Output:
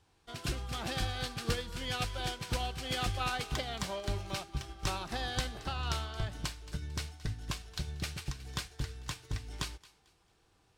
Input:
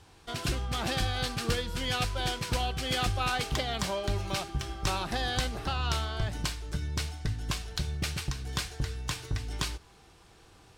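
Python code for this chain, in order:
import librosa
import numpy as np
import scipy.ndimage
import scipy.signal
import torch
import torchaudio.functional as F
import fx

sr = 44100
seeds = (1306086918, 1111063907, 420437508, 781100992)

y = fx.echo_thinned(x, sr, ms=223, feedback_pct=32, hz=1000.0, wet_db=-12)
y = fx.upward_expand(y, sr, threshold_db=-45.0, expansion=1.5)
y = F.gain(torch.from_numpy(y), -2.5).numpy()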